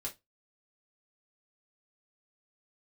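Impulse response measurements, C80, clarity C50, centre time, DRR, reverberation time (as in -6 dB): 27.5 dB, 16.0 dB, 13 ms, -2.5 dB, 0.20 s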